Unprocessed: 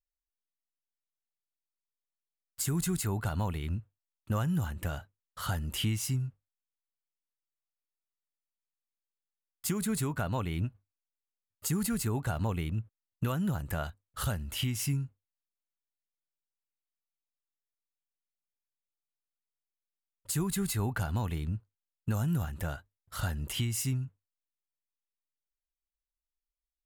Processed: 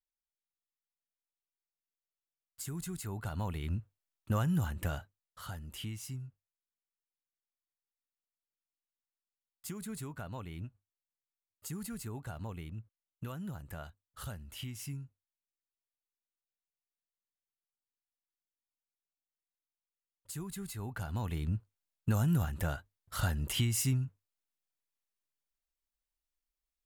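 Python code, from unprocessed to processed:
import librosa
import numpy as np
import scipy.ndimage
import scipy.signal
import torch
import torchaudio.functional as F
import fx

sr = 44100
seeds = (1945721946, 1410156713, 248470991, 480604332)

y = fx.gain(x, sr, db=fx.line((2.97, -9.5), (3.79, -0.5), (4.94, -0.5), (5.49, -10.5), (20.77, -10.5), (21.55, 1.0)))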